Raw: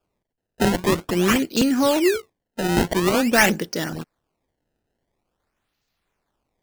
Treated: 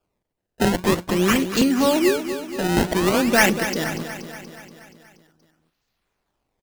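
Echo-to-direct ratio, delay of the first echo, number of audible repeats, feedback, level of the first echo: −8.5 dB, 238 ms, 6, 60%, −10.5 dB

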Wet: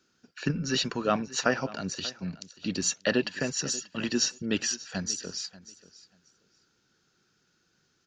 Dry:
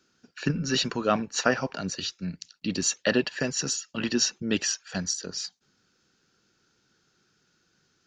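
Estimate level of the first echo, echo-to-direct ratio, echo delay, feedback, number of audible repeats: −18.5 dB, −18.5 dB, 586 ms, 18%, 2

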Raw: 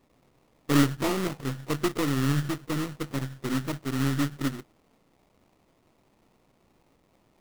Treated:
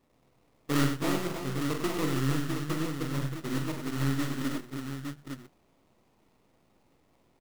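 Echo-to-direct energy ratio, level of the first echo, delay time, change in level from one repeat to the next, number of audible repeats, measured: −0.5 dB, −5.5 dB, 44 ms, repeats not evenly spaced, 4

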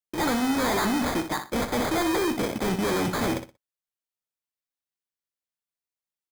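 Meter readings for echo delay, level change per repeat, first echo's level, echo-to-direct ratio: 61 ms, −13.0 dB, −9.0 dB, −9.0 dB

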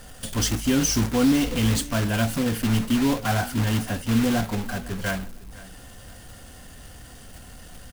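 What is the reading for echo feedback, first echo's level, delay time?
28%, −20.0 dB, 506 ms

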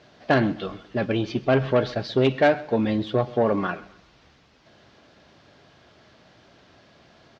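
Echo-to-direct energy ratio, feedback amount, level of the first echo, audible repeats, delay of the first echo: −19.5 dB, 38%, −20.0 dB, 2, 130 ms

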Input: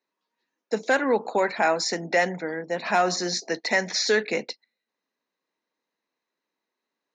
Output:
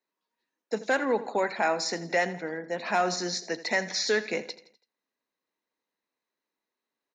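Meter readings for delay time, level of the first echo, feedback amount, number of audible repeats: 83 ms, −16.0 dB, 47%, 3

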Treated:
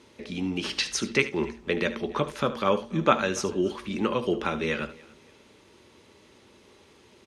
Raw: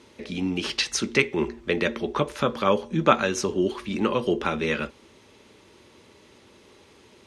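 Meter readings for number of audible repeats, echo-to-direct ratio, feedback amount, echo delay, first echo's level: 3, −13.5 dB, repeats not evenly spaced, 74 ms, −14.0 dB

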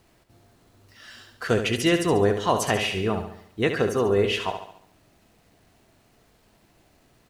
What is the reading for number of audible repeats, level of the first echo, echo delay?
5, −8.0 dB, 70 ms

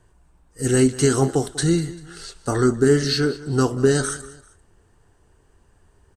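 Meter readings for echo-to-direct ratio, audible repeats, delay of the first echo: −17.5 dB, 2, 195 ms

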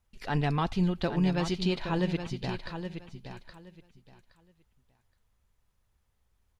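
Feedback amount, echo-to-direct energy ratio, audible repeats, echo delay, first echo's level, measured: 21%, −9.0 dB, 2, 820 ms, −9.0 dB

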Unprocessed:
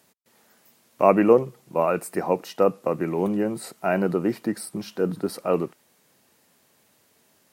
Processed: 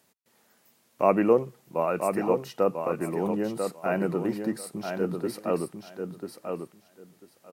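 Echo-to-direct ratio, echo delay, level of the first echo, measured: −6.0 dB, 993 ms, −6.0 dB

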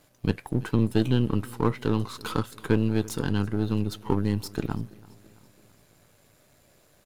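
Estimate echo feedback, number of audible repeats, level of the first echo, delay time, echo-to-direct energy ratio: 55%, 3, −22.5 dB, 333 ms, −21.0 dB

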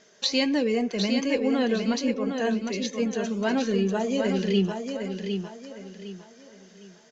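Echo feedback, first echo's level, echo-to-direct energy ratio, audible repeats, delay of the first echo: 33%, −6.0 dB, −5.5 dB, 4, 757 ms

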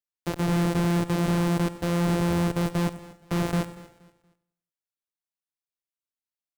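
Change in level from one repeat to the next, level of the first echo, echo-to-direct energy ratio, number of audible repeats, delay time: repeats not evenly spaced, −16.5 dB, −13.5 dB, 5, 93 ms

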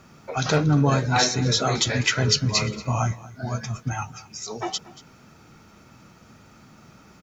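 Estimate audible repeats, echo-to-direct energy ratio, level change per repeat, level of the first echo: 1, −19.0 dB, repeats not evenly spaced, −19.0 dB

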